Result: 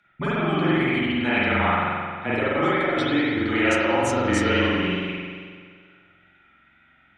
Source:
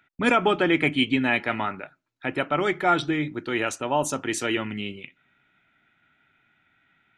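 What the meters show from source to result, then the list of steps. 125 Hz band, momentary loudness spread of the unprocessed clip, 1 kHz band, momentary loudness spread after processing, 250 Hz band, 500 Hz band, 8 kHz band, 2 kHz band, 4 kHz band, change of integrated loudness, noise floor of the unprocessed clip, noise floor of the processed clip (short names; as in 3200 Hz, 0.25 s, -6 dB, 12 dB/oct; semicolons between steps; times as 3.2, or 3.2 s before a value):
+6.5 dB, 12 LU, +1.0 dB, 8 LU, +3.5 dB, +2.5 dB, -3.0 dB, +3.0 dB, +1.0 dB, +2.0 dB, -69 dBFS, -59 dBFS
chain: flange 0.53 Hz, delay 4.7 ms, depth 8 ms, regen +31%; negative-ratio compressor -28 dBFS, ratio -0.5; spring tank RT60 1.9 s, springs 44 ms, chirp 55 ms, DRR -8.5 dB; frequency shift -24 Hz; LPF 8700 Hz 12 dB/oct; wow and flutter 22 cents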